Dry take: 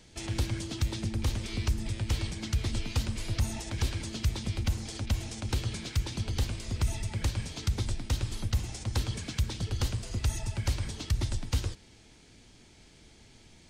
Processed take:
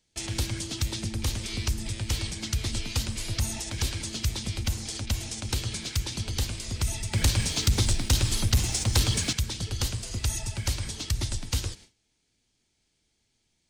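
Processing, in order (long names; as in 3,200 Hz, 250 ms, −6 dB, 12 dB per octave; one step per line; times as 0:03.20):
noise gate with hold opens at −42 dBFS
high-shelf EQ 3,000 Hz +9.5 dB
0:07.13–0:09.33: leveller curve on the samples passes 2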